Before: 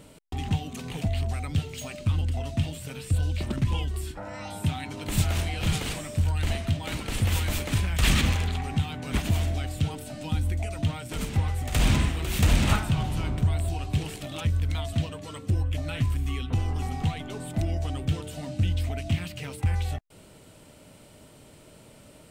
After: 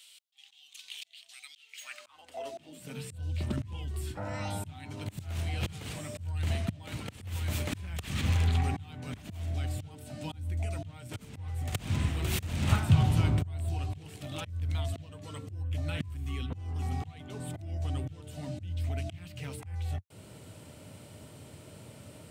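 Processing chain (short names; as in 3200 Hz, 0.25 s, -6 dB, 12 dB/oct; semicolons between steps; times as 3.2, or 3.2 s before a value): auto swell 0.674 s; high-pass sweep 3300 Hz -> 93 Hz, 1.54–3.24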